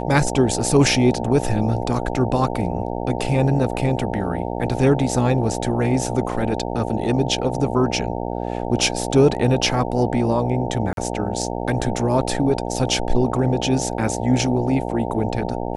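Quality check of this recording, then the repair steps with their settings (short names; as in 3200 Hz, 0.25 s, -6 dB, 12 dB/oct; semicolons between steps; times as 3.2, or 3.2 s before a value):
buzz 60 Hz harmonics 15 -26 dBFS
10.93–10.97 gap 42 ms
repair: de-hum 60 Hz, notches 15; interpolate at 10.93, 42 ms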